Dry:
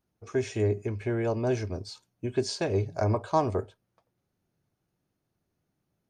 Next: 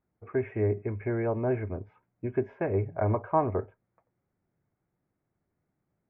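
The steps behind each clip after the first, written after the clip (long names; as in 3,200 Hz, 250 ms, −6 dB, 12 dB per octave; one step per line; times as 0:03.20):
elliptic low-pass filter 2,200 Hz, stop band 50 dB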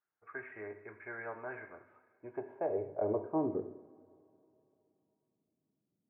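band-pass filter sweep 1,500 Hz → 240 Hz, 0:01.75–0:03.75
coupled-rooms reverb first 0.73 s, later 3.2 s, from −19 dB, DRR 6.5 dB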